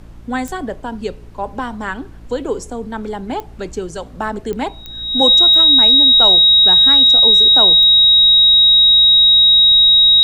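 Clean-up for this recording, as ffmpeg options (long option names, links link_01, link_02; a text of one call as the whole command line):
ffmpeg -i in.wav -af "adeclick=threshold=4,bandreject=frequency=56.8:width_type=h:width=4,bandreject=frequency=113.6:width_type=h:width=4,bandreject=frequency=170.4:width_type=h:width=4,bandreject=frequency=227.2:width_type=h:width=4,bandreject=frequency=284:width_type=h:width=4,bandreject=frequency=340.8:width_type=h:width=4,bandreject=frequency=3800:width=30,agate=range=-21dB:threshold=-27dB" out.wav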